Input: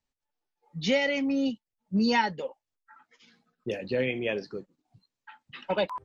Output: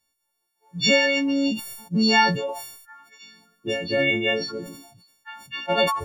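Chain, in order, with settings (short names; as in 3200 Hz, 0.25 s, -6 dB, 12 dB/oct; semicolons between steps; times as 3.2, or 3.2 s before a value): frequency quantiser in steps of 4 st; sustainer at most 66 dB/s; gain +4 dB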